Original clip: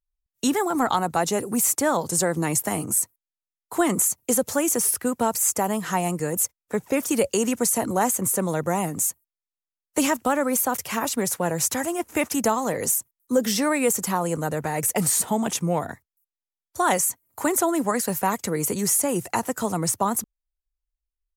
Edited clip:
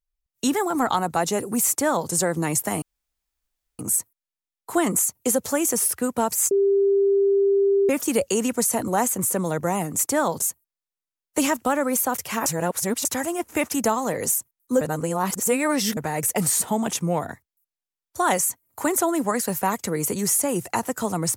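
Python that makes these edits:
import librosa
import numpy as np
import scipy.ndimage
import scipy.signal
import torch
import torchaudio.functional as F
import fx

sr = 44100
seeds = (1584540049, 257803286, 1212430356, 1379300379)

y = fx.edit(x, sr, fx.duplicate(start_s=1.68, length_s=0.43, to_s=9.02),
    fx.insert_room_tone(at_s=2.82, length_s=0.97),
    fx.bleep(start_s=5.54, length_s=1.38, hz=396.0, db=-15.5),
    fx.reverse_span(start_s=11.06, length_s=0.59),
    fx.reverse_span(start_s=13.41, length_s=1.16), tone=tone)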